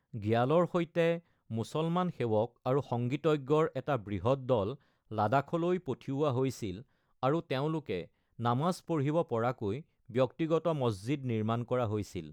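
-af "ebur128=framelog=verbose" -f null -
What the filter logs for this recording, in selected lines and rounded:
Integrated loudness:
  I:         -32.4 LUFS
  Threshold: -42.5 LUFS
Loudness range:
  LRA:         2.1 LU
  Threshold: -52.7 LUFS
  LRA low:   -33.8 LUFS
  LRA high:  -31.7 LUFS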